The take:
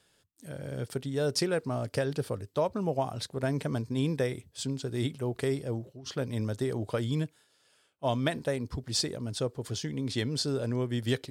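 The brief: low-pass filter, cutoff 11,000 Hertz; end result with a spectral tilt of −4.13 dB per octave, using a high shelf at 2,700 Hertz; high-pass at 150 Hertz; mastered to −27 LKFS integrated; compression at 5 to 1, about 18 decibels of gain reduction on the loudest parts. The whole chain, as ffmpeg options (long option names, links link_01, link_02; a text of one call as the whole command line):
ffmpeg -i in.wav -af "highpass=150,lowpass=11000,highshelf=frequency=2700:gain=6.5,acompressor=threshold=-42dB:ratio=5,volume=18dB" out.wav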